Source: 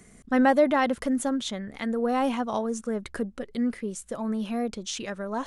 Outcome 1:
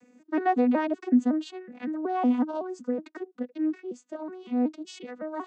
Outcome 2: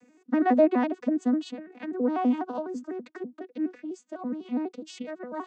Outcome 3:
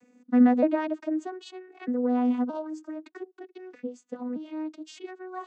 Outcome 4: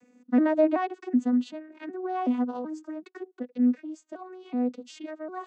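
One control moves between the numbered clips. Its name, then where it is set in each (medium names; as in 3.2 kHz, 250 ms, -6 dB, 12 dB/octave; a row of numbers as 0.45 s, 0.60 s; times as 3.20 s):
vocoder on a broken chord, a note every: 186 ms, 83 ms, 622 ms, 377 ms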